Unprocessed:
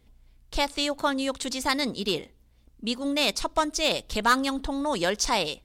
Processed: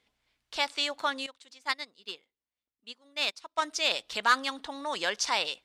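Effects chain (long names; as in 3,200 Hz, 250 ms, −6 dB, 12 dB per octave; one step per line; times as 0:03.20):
resonant band-pass 2,400 Hz, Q 0.55
0:01.26–0:03.62: expander for the loud parts 2.5 to 1, over −37 dBFS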